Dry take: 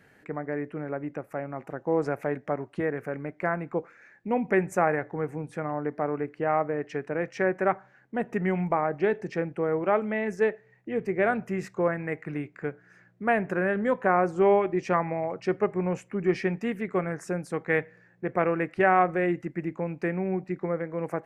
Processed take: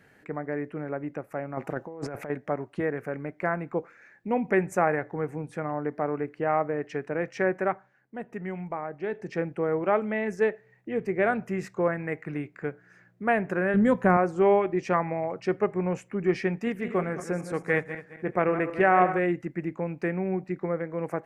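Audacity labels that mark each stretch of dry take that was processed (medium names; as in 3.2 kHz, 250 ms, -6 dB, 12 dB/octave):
1.570000	2.300000	compressor with a negative ratio -35 dBFS
7.540000	9.400000	dip -8 dB, fades 0.36 s
13.740000	14.170000	tone controls bass +14 dB, treble +9 dB
16.560000	19.190000	backward echo that repeats 107 ms, feedback 55%, level -10 dB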